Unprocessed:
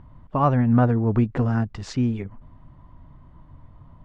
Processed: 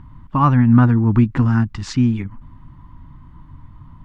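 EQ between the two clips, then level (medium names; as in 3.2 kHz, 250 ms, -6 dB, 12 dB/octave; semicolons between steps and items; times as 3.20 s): high-order bell 540 Hz -13 dB 1.1 oct; +6.5 dB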